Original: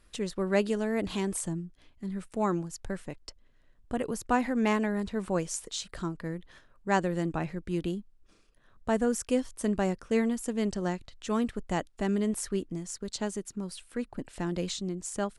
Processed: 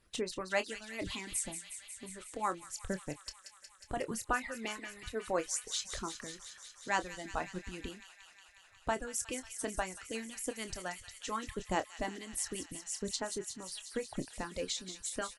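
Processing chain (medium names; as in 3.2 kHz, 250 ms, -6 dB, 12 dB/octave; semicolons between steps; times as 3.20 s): reverb removal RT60 1.5 s; harmonic-percussive split harmonic -17 dB; doubling 27 ms -11.5 dB; feedback echo behind a high-pass 181 ms, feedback 80%, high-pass 2.2 kHz, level -9 dB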